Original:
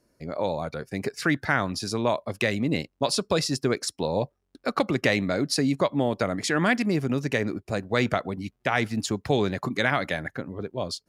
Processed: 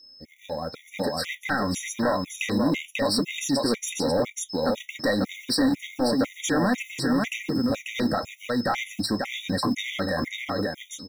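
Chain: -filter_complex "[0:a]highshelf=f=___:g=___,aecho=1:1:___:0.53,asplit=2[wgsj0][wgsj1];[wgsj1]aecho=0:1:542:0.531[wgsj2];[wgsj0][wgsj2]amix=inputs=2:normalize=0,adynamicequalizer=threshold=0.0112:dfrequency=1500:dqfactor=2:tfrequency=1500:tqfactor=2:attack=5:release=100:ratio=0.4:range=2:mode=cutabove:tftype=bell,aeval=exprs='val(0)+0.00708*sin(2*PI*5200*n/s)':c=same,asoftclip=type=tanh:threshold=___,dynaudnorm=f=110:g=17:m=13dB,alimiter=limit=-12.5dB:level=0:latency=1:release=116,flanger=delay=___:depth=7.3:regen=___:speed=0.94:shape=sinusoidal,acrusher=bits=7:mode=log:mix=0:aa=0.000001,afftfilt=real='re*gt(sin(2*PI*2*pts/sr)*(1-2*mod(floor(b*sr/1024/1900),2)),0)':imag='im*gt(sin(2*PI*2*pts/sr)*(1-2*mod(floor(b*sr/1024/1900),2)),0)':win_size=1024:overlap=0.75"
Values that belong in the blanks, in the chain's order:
8000, 2.5, 3.8, -19dB, 6.6, -63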